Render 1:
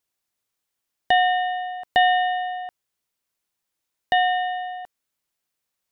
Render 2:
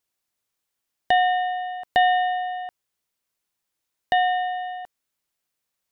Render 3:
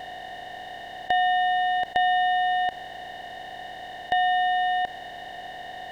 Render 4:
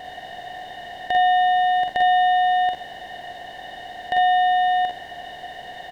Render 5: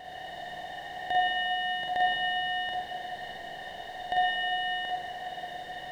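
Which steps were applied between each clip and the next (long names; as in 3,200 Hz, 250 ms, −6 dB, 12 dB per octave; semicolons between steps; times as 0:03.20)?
dynamic equaliser 2,800 Hz, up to −4 dB, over −35 dBFS, Q 0.99
compressor on every frequency bin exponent 0.2; level −5.5 dB
ambience of single reflections 45 ms −3.5 dB, 59 ms −6.5 dB
convolution reverb RT60 2.3 s, pre-delay 39 ms, DRR −2.5 dB; level −7.5 dB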